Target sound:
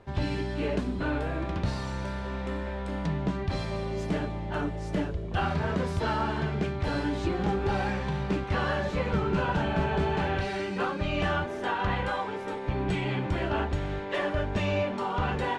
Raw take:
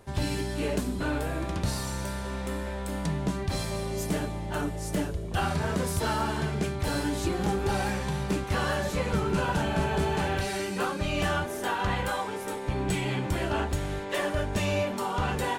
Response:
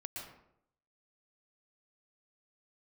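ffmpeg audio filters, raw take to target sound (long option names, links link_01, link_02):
-af "lowpass=3500"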